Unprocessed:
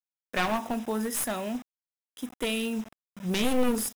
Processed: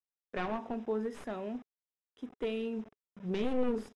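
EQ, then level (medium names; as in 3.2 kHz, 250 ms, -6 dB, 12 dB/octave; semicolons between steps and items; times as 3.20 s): tape spacing loss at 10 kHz 27 dB; peaking EQ 420 Hz +8.5 dB 0.36 oct; -6.5 dB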